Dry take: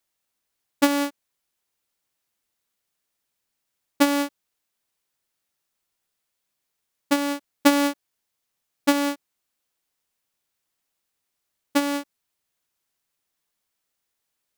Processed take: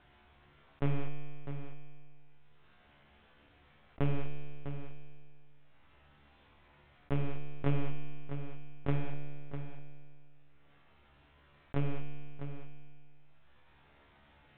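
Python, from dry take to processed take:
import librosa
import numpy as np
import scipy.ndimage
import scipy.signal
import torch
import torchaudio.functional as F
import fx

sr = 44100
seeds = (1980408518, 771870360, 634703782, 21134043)

y = fx.lower_of_two(x, sr, delay_ms=2.3, at=(8.95, 11.76))
y = fx.low_shelf(y, sr, hz=200.0, db=7.0)
y = fx.lpc_monotone(y, sr, seeds[0], pitch_hz=140.0, order=10)
y = fx.air_absorb(y, sr, metres=390.0)
y = fx.comb_fb(y, sr, f0_hz=72.0, decay_s=1.1, harmonics='all', damping=0.0, mix_pct=90)
y = y + 10.0 ** (-17.5 / 20.0) * np.pad(y, (int(651 * sr / 1000.0), 0))[:len(y)]
y = fx.env_flatten(y, sr, amount_pct=50)
y = y * librosa.db_to_amplitude(-1.5)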